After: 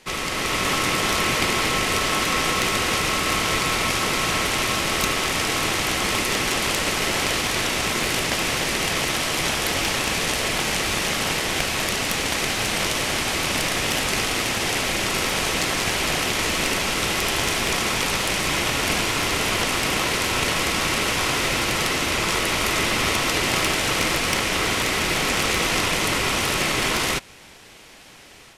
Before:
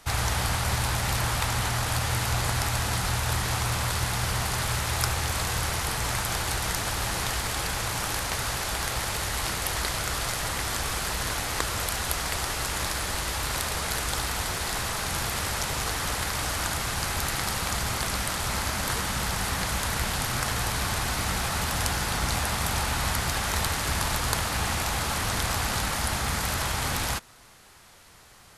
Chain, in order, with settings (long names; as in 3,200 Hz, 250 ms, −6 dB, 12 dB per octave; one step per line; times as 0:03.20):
high-pass filter 260 Hz 6 dB per octave
high-shelf EQ 9,100 Hz −11.5 dB
automatic gain control gain up to 6 dB
harmonic generator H 5 −14 dB, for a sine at −3.5 dBFS
ring modulation 1,200 Hz